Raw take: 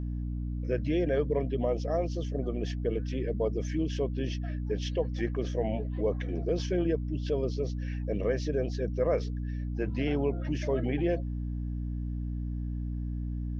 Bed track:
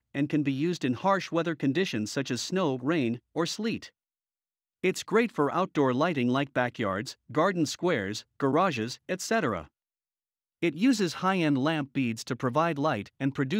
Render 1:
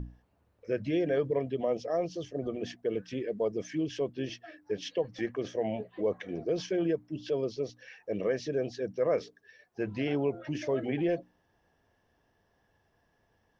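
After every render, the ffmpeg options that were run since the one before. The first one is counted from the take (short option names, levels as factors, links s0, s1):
-af "bandreject=f=60:t=h:w=6,bandreject=f=120:t=h:w=6,bandreject=f=180:t=h:w=6,bandreject=f=240:t=h:w=6,bandreject=f=300:t=h:w=6"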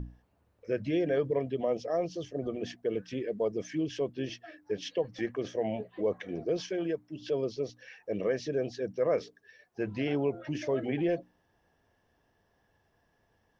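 -filter_complex "[0:a]asettb=1/sr,asplit=3[s0][s1][s2];[s0]atrim=end=6.574[s3];[s1]atrim=start=6.57:end=7.22,asetpts=PTS-STARTPTS,afade=t=in:d=0.004:c=qsin,afade=t=out:st=0.646:d=0.004:c=qsin,lowshelf=f=420:g=-6[s4];[s2]atrim=start=7.216[s5];[s3][s4]acrossfade=d=0.004:c1=hsin:c2=qsin[s6];[s6][s5]acrossfade=d=0.004:c1=qsin:c2=hsin"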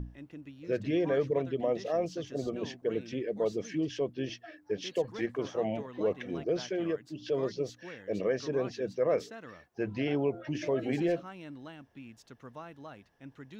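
-filter_complex "[1:a]volume=0.1[s0];[0:a][s0]amix=inputs=2:normalize=0"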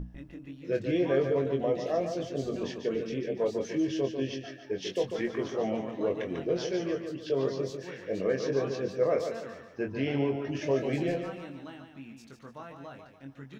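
-filter_complex "[0:a]asplit=2[s0][s1];[s1]adelay=22,volume=0.531[s2];[s0][s2]amix=inputs=2:normalize=0,asplit=2[s3][s4];[s4]aecho=0:1:145|290|435|580:0.447|0.17|0.0645|0.0245[s5];[s3][s5]amix=inputs=2:normalize=0"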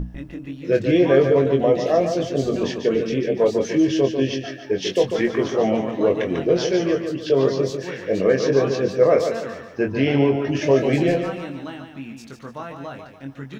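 -af "volume=3.55"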